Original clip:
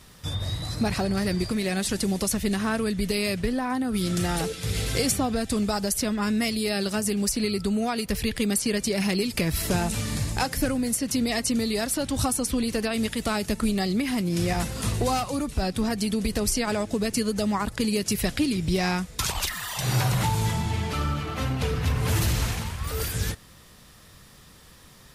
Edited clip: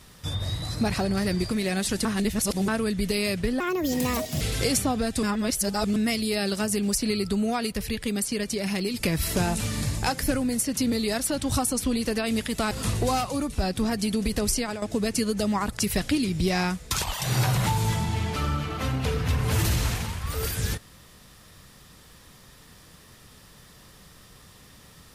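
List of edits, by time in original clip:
0:02.05–0:02.68: reverse
0:03.60–0:04.75: play speed 142%
0:05.57–0:06.30: reverse
0:08.07–0:09.28: clip gain −3 dB
0:11.26–0:11.59: remove
0:13.38–0:14.70: remove
0:16.53–0:16.81: fade out, to −11.5 dB
0:17.78–0:18.07: remove
0:19.42–0:19.71: remove

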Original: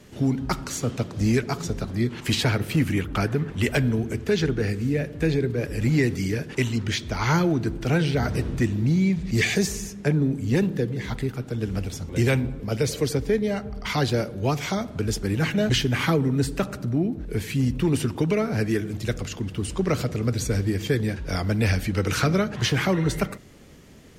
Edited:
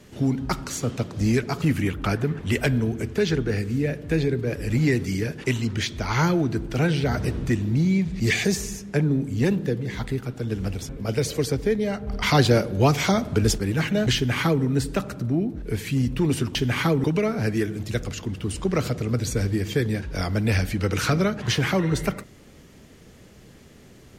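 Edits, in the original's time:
0:01.62–0:02.73: remove
0:12.00–0:12.52: remove
0:13.70–0:15.21: clip gain +5.5 dB
0:15.78–0:16.27: duplicate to 0:18.18

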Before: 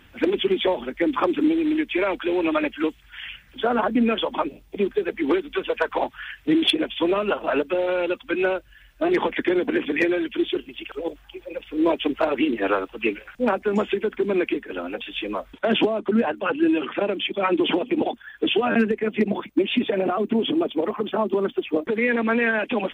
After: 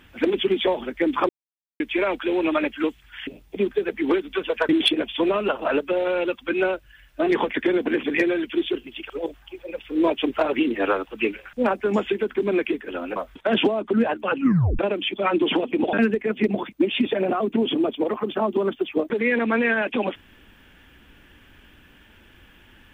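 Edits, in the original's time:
0:01.29–0:01.80: silence
0:03.27–0:04.47: remove
0:05.89–0:06.51: remove
0:14.98–0:15.34: remove
0:16.55: tape stop 0.42 s
0:18.11–0:18.70: remove

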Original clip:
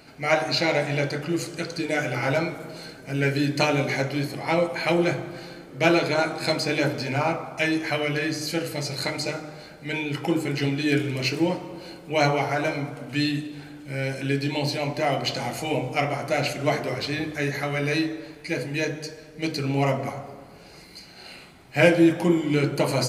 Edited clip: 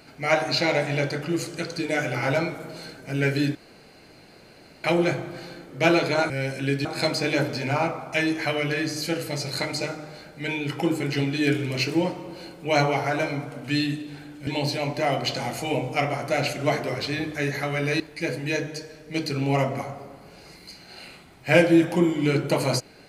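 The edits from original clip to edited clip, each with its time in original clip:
0:03.55–0:04.84: fill with room tone
0:13.92–0:14.47: move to 0:06.30
0:18.00–0:18.28: remove

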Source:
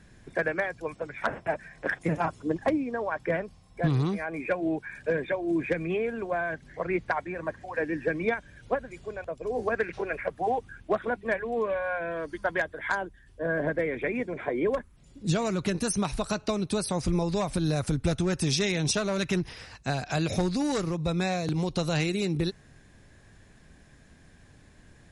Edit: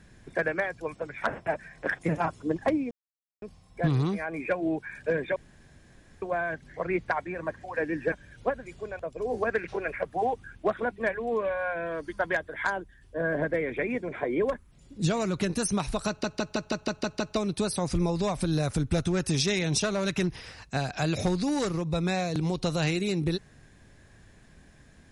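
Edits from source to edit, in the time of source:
0:02.91–0:03.42: silence
0:05.36–0:06.22: fill with room tone
0:08.12–0:08.37: remove
0:16.33: stutter 0.16 s, 8 plays

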